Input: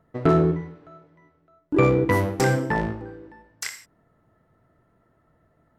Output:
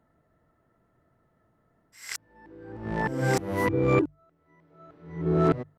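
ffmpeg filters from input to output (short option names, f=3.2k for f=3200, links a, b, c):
-af "areverse,atempo=1,bandreject=f=50:t=h:w=6,bandreject=f=100:t=h:w=6,bandreject=f=150:t=h:w=6,volume=-4dB"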